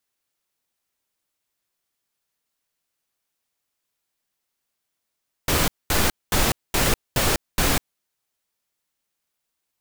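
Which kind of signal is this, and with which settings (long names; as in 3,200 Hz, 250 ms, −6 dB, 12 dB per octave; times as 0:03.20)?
noise bursts pink, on 0.20 s, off 0.22 s, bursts 6, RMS −19.5 dBFS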